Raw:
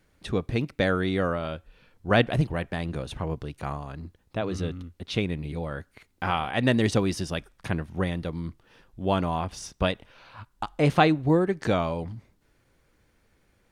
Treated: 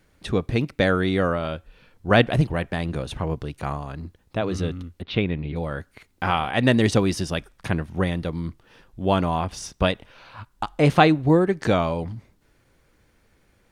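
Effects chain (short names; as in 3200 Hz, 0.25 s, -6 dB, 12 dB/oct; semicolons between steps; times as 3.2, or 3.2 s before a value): 5.02–5.56 LPF 3700 Hz 24 dB/oct; gain +4 dB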